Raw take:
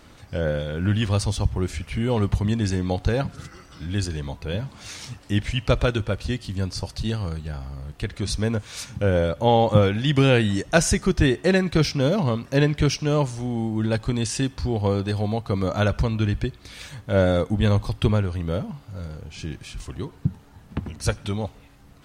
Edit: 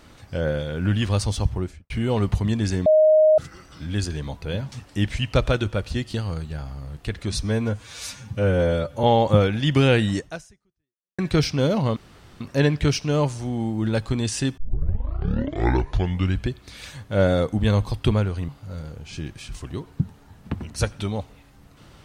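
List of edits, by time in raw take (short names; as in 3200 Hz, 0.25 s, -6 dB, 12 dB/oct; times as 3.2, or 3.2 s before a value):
1.49–1.9 studio fade out
2.86–3.38 bleep 622 Hz -11.5 dBFS
4.72–5.06 cut
6.48–7.09 cut
8.38–9.45 stretch 1.5×
10.6–11.6 fade out exponential
12.38 insert room tone 0.44 s
14.55 tape start 1.91 s
18.46–18.74 cut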